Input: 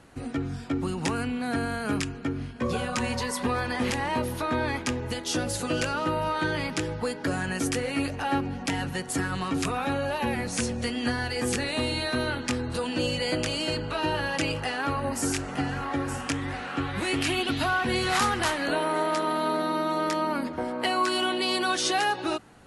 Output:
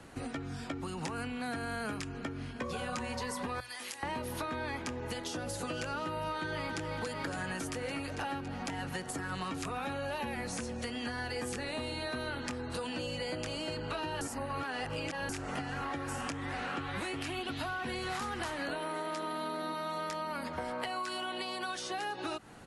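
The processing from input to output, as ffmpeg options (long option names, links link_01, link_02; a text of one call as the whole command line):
ffmpeg -i in.wav -filter_complex "[0:a]asettb=1/sr,asplit=3[link_01][link_02][link_03];[link_01]atrim=end=3.604[link_04];[link_02]atrim=start=3.6:end=4.03,asetpts=PTS-STARTPTS,afade=type=in:duration=0.004:curve=qsin,afade=type=out:start_time=0.426:duration=0.004:curve=qsin,aderivative[link_05];[link_03]atrim=start=4.026[link_06];[link_04][link_05]acrossfade=duration=0.004:curve1=hsin:curve2=qsin[link_07];[link_07][link_06]acrossfade=duration=0.004:curve1=qsin:curve2=hsin,asplit=2[link_08][link_09];[link_09]afade=type=in:start_time=6.24:duration=0.01,afade=type=out:start_time=6.79:duration=0.01,aecho=0:1:280|560|840|1120|1400|1680|1960|2240|2520|2800|3080|3360:0.446684|0.335013|0.25126|0.188445|0.141333|0.106|0.0795001|0.0596251|0.0447188|0.0335391|0.0251543|0.0188657[link_10];[link_08][link_10]amix=inputs=2:normalize=0,asettb=1/sr,asplit=3[link_11][link_12][link_13];[link_11]atrim=end=19.744[link_14];[link_12]atrim=start=19.74:end=21.91,asetpts=PTS-STARTPTS,afade=type=in:duration=0.004:curve=qsin,afade=type=out:start_time=2.166:duration=0.004:curve=qsin,equalizer=frequency=310:width_type=o:width=0.99:gain=-11[link_15];[link_13]atrim=start=21.906[link_16];[link_14][link_15]acrossfade=duration=0.004:curve1=hsin:curve2=qsin[link_17];[link_17][link_16]acrossfade=duration=0.004:curve1=qsin:curve2=hsin,asplit=3[link_18][link_19][link_20];[link_18]atrim=end=14.212[link_21];[link_19]atrim=start=14.208:end=15.292,asetpts=PTS-STARTPTS,areverse[link_22];[link_20]atrim=start=15.288[link_23];[link_21][link_22]acrossfade=duration=0.004:curve1=hsin:curve2=hsin[link_24];[link_24][link_23]acrossfade=duration=0.004:curve1=hsin:curve2=hsin,acompressor=threshold=-32dB:ratio=6,bandreject=frequency=60:width_type=h:width=6,bandreject=frequency=120:width_type=h:width=6,acrossover=split=160|520|1500[link_25][link_26][link_27][link_28];[link_25]acompressor=threshold=-46dB:ratio=4[link_29];[link_26]acompressor=threshold=-44dB:ratio=4[link_30];[link_27]acompressor=threshold=-40dB:ratio=4[link_31];[link_28]acompressor=threshold=-43dB:ratio=4[link_32];[link_29][link_30][link_31][link_32]amix=inputs=4:normalize=0,volume=1.5dB" out.wav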